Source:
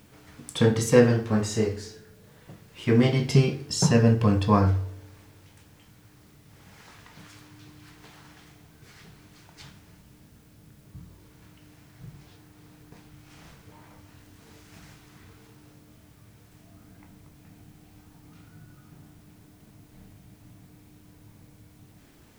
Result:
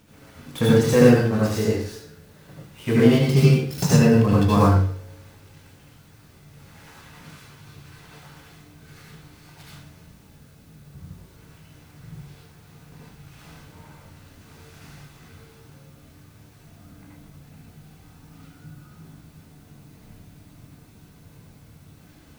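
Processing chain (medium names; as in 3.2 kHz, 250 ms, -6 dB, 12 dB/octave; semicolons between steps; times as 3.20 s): dead-time distortion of 0.065 ms; reverberation RT60 0.35 s, pre-delay 69 ms, DRR -4.5 dB; trim -1.5 dB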